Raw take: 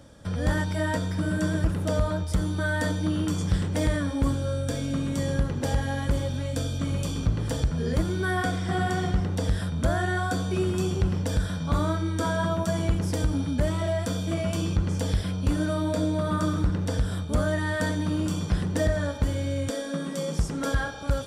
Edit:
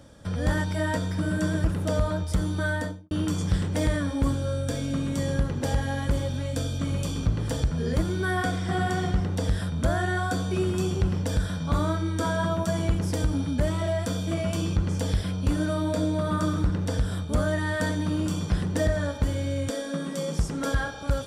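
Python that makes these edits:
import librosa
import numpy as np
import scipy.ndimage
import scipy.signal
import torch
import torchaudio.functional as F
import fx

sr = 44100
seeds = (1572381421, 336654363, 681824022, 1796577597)

y = fx.studio_fade_out(x, sr, start_s=2.67, length_s=0.44)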